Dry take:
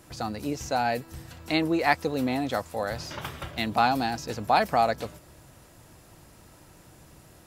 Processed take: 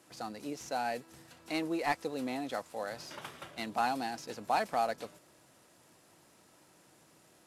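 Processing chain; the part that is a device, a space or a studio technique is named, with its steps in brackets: early wireless headset (high-pass 210 Hz 12 dB/octave; CVSD coder 64 kbps); trim -8 dB

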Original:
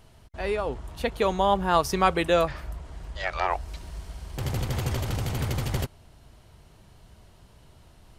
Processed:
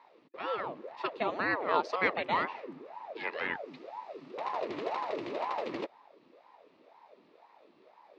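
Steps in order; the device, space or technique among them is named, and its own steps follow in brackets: voice changer toy (ring modulator with a swept carrier 570 Hz, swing 65%, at 2 Hz; cabinet simulation 420–3700 Hz, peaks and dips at 770 Hz -6 dB, 1.5 kHz -9 dB, 3.2 kHz -7 dB)

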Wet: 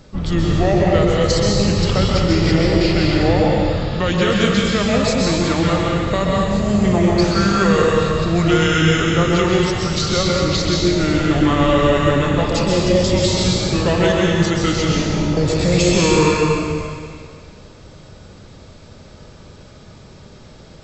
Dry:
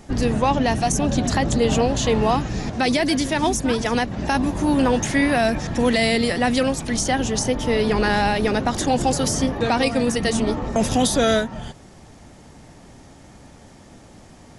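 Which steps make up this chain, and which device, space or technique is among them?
slowed and reverbed (tape speed -30%; reverberation RT60 2.0 s, pre-delay 120 ms, DRR -3 dB)

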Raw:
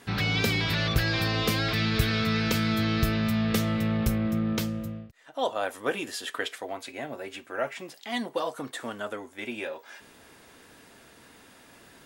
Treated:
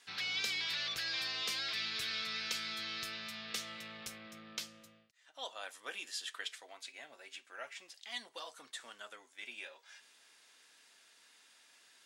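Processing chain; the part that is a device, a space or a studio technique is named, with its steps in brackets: piezo pickup straight into a mixer (low-pass 5.6 kHz 12 dB/octave; differentiator); trim +1 dB

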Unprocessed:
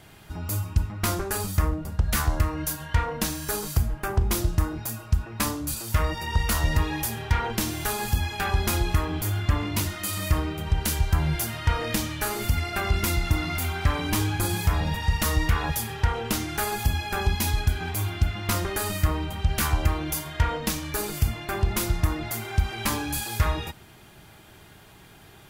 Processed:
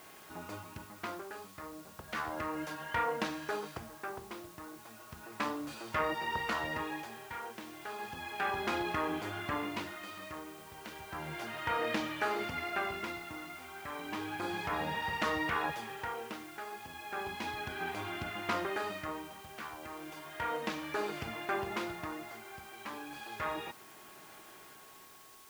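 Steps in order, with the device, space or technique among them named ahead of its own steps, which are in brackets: shortwave radio (band-pass 320–2600 Hz; tremolo 0.33 Hz, depth 76%; whistle 1.1 kHz -59 dBFS; white noise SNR 19 dB); trim -1.5 dB

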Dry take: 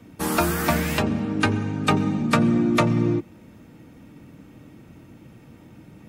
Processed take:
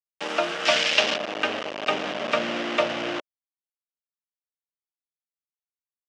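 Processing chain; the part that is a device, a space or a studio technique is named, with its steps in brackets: hand-held game console (bit crusher 4-bit; cabinet simulation 460–5100 Hz, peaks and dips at 600 Hz +9 dB, 960 Hz -4 dB, 2.9 kHz +7 dB, 4.3 kHz -5 dB); 0.65–1.16 s: peaking EQ 5.2 kHz +12.5 dB 2.5 oct; trim -3.5 dB

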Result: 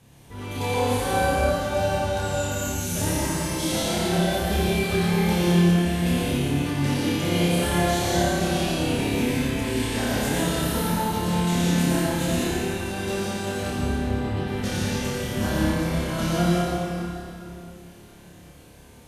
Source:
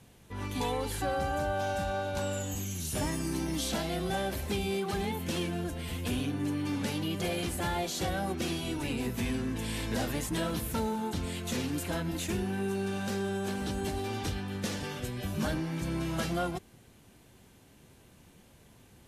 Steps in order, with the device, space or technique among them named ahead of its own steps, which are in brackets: 13.67–14.37 s: distance through air 490 m; tunnel (flutter echo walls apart 4.9 m, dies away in 0.6 s; reverberation RT60 2.8 s, pre-delay 79 ms, DRR -5.5 dB)

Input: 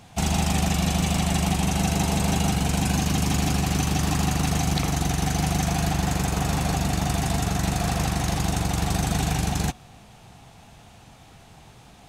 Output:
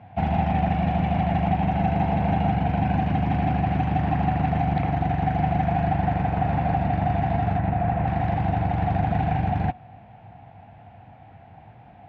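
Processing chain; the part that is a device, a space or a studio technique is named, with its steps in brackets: 7.59–8.07 s: distance through air 250 m; bass cabinet (cabinet simulation 71–2200 Hz, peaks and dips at 100 Hz +8 dB, 400 Hz -7 dB, 740 Hz +9 dB, 1.2 kHz -9 dB)

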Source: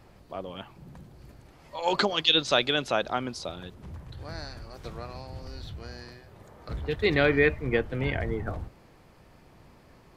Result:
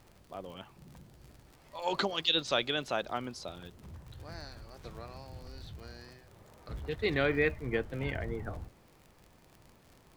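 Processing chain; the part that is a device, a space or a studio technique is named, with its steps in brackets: vinyl LP (wow and flutter; crackle 51 per s -37 dBFS; pink noise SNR 33 dB); trim -6.5 dB

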